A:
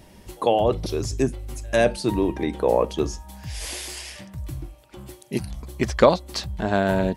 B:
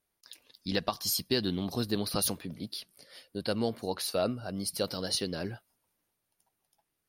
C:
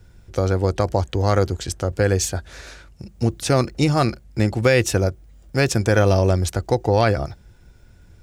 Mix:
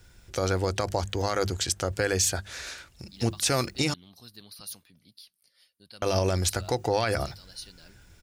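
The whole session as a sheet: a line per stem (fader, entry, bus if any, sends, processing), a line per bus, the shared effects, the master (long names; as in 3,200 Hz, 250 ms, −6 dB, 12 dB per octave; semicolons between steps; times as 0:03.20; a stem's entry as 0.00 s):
muted
−3.5 dB, 2.45 s, no send, guitar amp tone stack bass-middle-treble 5-5-5
−1.0 dB, 0.00 s, muted 0:03.94–0:06.02, no send, tilt shelving filter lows −5.5 dB, about 1,100 Hz; mains-hum notches 50/100/150/200 Hz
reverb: not used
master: brickwall limiter −13.5 dBFS, peak gain reduction 8.5 dB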